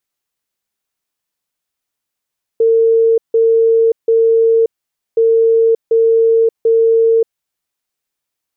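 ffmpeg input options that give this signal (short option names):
-f lavfi -i "aevalsrc='0.422*sin(2*PI*454*t)*clip(min(mod(mod(t,2.57),0.74),0.58-mod(mod(t,2.57),0.74))/0.005,0,1)*lt(mod(t,2.57),2.22)':d=5.14:s=44100"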